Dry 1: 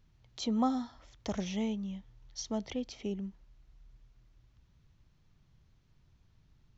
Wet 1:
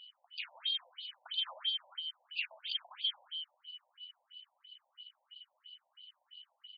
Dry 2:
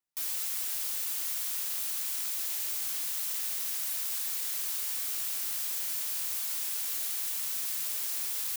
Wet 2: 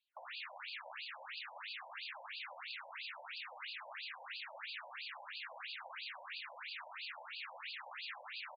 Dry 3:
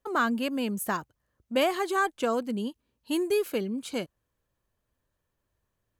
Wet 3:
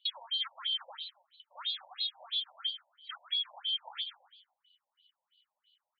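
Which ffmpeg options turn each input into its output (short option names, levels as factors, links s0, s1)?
-filter_complex "[0:a]afftfilt=real='real(if(lt(b,272),68*(eq(floor(b/68),0)*1+eq(floor(b/68),1)*3+eq(floor(b/68),2)*0+eq(floor(b/68),3)*2)+mod(b,68),b),0)':imag='imag(if(lt(b,272),68*(eq(floor(b/68),0)*1+eq(floor(b/68),1)*3+eq(floor(b/68),2)*0+eq(floor(b/68),3)*2)+mod(b,68),b),0)':win_size=2048:overlap=0.75,highpass=f=330:p=1,acompressor=threshold=0.0126:ratio=10,aeval=exprs='0.0531*(cos(1*acos(clip(val(0)/0.0531,-1,1)))-cos(1*PI/2))+0.0266*(cos(2*acos(clip(val(0)/0.0531,-1,1)))-cos(2*PI/2))+0.0237*(cos(5*acos(clip(val(0)/0.0531,-1,1)))-cos(5*PI/2))+0.015*(cos(6*acos(clip(val(0)/0.0531,-1,1)))-cos(6*PI/2))':c=same,acrusher=bits=3:mode=log:mix=0:aa=0.000001,asplit=2[s0][s1];[s1]aecho=0:1:131|262|393|524:0.299|0.116|0.0454|0.0177[s2];[s0][s2]amix=inputs=2:normalize=0,aresample=11025,aresample=44100,afftfilt=real='re*between(b*sr/1024,690*pow(3500/690,0.5+0.5*sin(2*PI*3*pts/sr))/1.41,690*pow(3500/690,0.5+0.5*sin(2*PI*3*pts/sr))*1.41)':imag='im*between(b*sr/1024,690*pow(3500/690,0.5+0.5*sin(2*PI*3*pts/sr))/1.41,690*pow(3500/690,0.5+0.5*sin(2*PI*3*pts/sr))*1.41)':win_size=1024:overlap=0.75"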